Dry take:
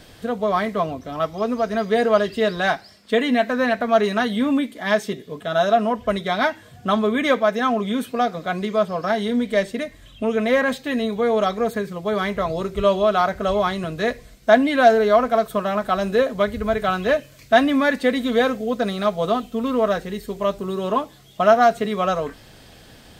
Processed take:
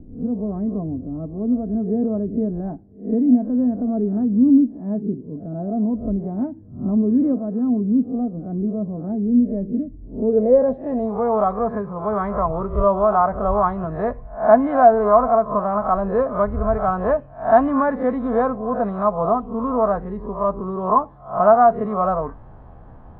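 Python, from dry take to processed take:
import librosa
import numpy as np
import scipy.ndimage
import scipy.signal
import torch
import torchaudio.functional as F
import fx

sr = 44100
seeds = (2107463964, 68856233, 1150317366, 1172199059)

y = fx.spec_swells(x, sr, rise_s=0.37)
y = fx.peak_eq(y, sr, hz=820.0, db=6.0, octaves=1.1)
y = fx.filter_sweep_lowpass(y, sr, from_hz=290.0, to_hz=1100.0, start_s=9.92, end_s=11.35, q=2.8)
y = fx.riaa(y, sr, side='playback')
y = y * 10.0 ** (-8.5 / 20.0)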